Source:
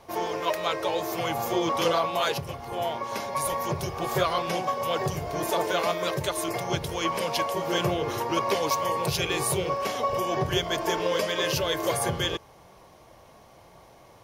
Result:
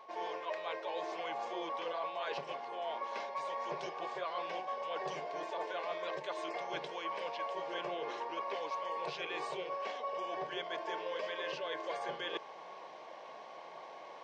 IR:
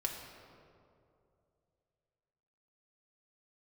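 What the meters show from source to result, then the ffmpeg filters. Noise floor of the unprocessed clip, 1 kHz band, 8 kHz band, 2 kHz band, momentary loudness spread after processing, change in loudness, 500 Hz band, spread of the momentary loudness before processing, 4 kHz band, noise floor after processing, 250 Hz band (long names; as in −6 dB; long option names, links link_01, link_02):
−53 dBFS, −10.5 dB, −26.5 dB, −10.5 dB, 11 LU, −12.5 dB, −12.0 dB, 5 LU, −14.5 dB, −50 dBFS, −18.0 dB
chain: -filter_complex "[0:a]acrossover=split=460 4500:gain=0.0631 1 0.0708[link_01][link_02][link_03];[link_01][link_02][link_03]amix=inputs=3:normalize=0,afftfilt=real='re*between(b*sr/4096,130,8700)':imag='im*between(b*sr/4096,130,8700)':win_size=4096:overlap=0.75,equalizer=frequency=220:width_type=o:width=1.9:gain=5,acrossover=split=2900[link_04][link_05];[link_05]acompressor=threshold=-41dB:ratio=4:attack=1:release=60[link_06];[link_04][link_06]amix=inputs=2:normalize=0,bandreject=frequency=1300:width=6.4,areverse,acompressor=threshold=-43dB:ratio=5,areverse,aeval=exprs='val(0)+0.00112*sin(2*PI*1100*n/s)':channel_layout=same,volume=4.5dB"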